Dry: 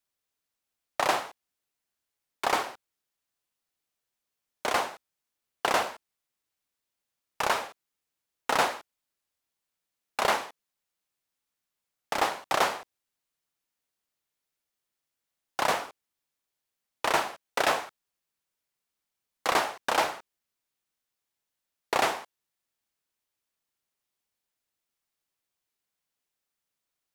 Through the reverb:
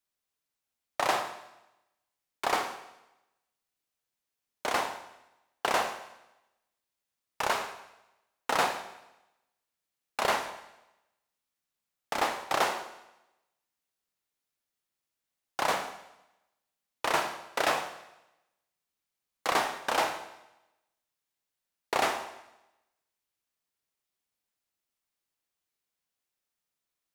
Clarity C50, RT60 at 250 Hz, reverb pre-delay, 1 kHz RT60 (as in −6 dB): 9.5 dB, 0.95 s, 26 ms, 0.95 s